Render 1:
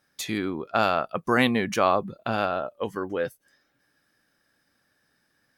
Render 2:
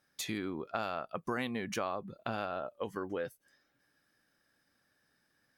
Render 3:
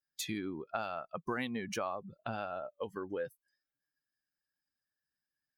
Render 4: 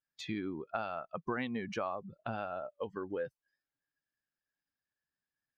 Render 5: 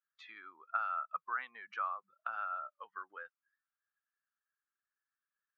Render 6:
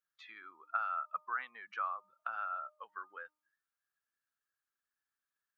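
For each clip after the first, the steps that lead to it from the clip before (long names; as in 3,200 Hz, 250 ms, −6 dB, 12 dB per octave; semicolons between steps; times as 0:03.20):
downward compressor 4 to 1, threshold −28 dBFS, peak gain reduction 11 dB; level −5 dB
spectral dynamics exaggerated over time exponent 1.5; level +1 dB
high-frequency loss of the air 180 metres; level +1 dB
four-pole ladder band-pass 1,400 Hz, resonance 70%; level +7.5 dB
hum removal 305.8 Hz, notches 4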